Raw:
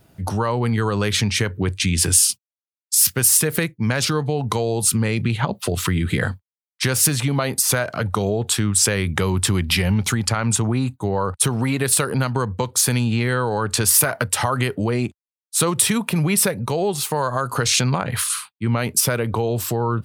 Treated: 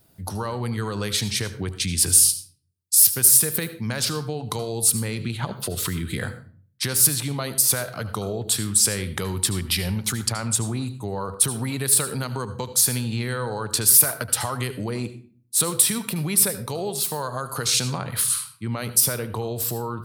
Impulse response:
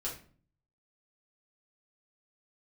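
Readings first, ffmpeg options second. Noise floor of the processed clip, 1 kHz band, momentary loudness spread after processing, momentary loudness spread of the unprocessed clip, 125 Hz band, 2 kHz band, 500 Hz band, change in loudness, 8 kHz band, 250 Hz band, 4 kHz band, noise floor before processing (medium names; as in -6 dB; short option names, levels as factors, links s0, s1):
-56 dBFS, -7.5 dB, 15 LU, 8 LU, -7.0 dB, -7.5 dB, -7.0 dB, -1.5 dB, 0.0 dB, -7.0 dB, -2.5 dB, under -85 dBFS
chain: -filter_complex "[0:a]aexciter=amount=2.7:drive=1.9:freq=3700,asplit=2[s0][s1];[1:a]atrim=start_sample=2205,adelay=73[s2];[s1][s2]afir=irnorm=-1:irlink=0,volume=0.211[s3];[s0][s3]amix=inputs=2:normalize=0,volume=0.422"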